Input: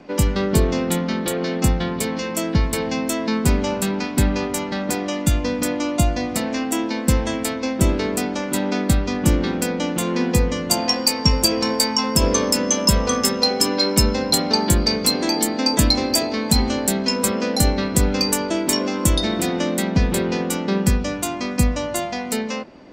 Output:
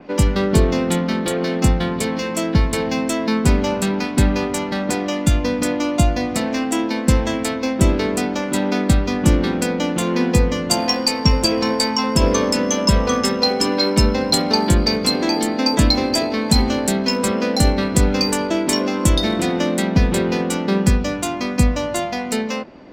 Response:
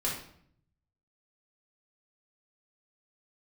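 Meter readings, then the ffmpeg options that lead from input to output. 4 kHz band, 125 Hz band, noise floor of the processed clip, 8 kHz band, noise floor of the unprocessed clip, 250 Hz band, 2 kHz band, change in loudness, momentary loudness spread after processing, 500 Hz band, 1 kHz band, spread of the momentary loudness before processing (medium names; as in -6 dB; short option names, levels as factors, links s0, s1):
0.0 dB, +2.5 dB, -25 dBFS, -2.5 dB, -27 dBFS, +2.5 dB, +2.0 dB, +1.5 dB, 5 LU, +2.5 dB, +2.5 dB, 7 LU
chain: -af "adynamicsmooth=sensitivity=6.5:basefreq=6100,adynamicequalizer=threshold=0.0178:dfrequency=5100:dqfactor=0.7:tfrequency=5100:tqfactor=0.7:attack=5:release=100:ratio=0.375:range=3.5:mode=cutabove:tftype=highshelf,volume=1.33"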